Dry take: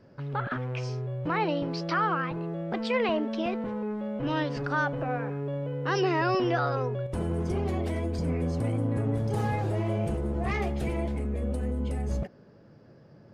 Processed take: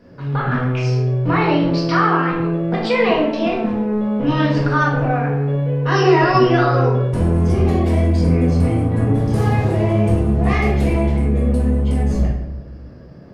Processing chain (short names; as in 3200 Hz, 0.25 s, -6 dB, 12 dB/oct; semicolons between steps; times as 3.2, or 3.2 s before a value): shoebox room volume 230 m³, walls mixed, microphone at 1.8 m; gain +5 dB